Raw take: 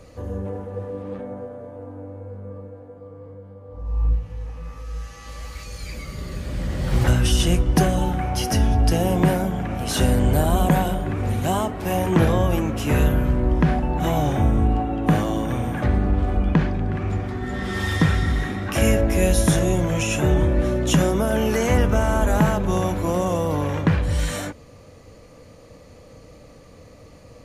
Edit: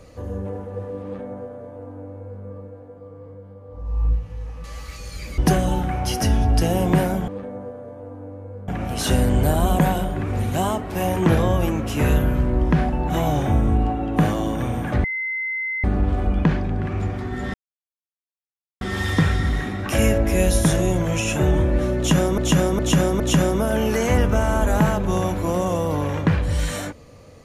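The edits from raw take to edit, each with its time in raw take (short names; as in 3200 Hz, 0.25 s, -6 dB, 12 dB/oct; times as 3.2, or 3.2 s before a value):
1.04–2.44 copy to 9.58
4.64–5.31 cut
6.05–7.68 cut
15.94 add tone 2060 Hz -23 dBFS 0.80 s
17.64 insert silence 1.27 s
20.8–21.21 loop, 4 plays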